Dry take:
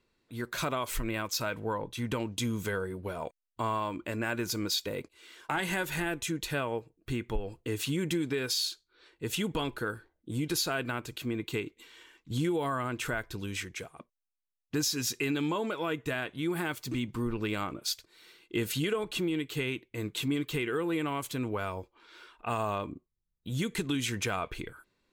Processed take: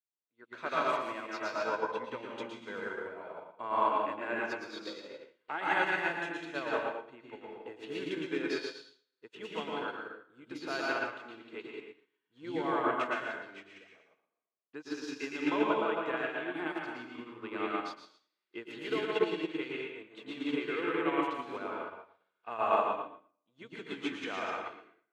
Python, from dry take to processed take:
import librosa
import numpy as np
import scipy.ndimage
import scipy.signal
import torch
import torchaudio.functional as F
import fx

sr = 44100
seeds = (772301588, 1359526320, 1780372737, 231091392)

p1 = fx.bandpass_edges(x, sr, low_hz=400.0, high_hz=2500.0)
p2 = p1 + fx.echo_single(p1, sr, ms=113, db=-4.0, dry=0)
p3 = fx.rev_plate(p2, sr, seeds[0], rt60_s=1.1, hf_ratio=0.85, predelay_ms=110, drr_db=-2.0)
p4 = fx.upward_expand(p3, sr, threshold_db=-50.0, expansion=2.5)
y = F.gain(torch.from_numpy(p4), 3.0).numpy()